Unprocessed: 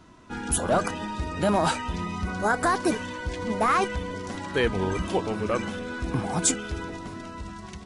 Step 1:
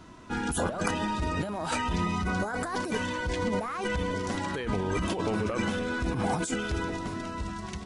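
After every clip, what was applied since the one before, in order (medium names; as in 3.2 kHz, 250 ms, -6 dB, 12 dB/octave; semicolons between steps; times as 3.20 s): compressor with a negative ratio -29 dBFS, ratio -1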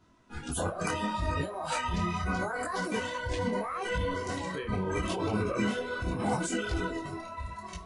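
filtered feedback delay 437 ms, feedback 71%, low-pass 3.2 kHz, level -15 dB; spectral noise reduction 13 dB; detune thickener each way 26 cents; trim +2.5 dB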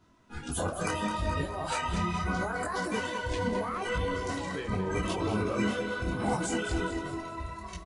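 feedback delay 212 ms, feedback 46%, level -10 dB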